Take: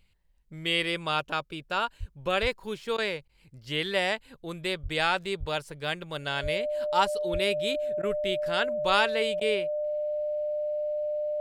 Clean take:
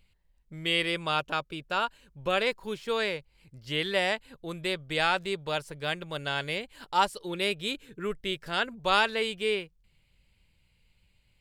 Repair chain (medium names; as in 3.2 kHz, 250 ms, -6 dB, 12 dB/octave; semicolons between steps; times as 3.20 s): band-stop 600 Hz, Q 30; de-plosive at 1.99/2.41/4.82/5.39/6.42/7.32 s; interpolate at 2.97/3.28/8.02/9.40 s, 10 ms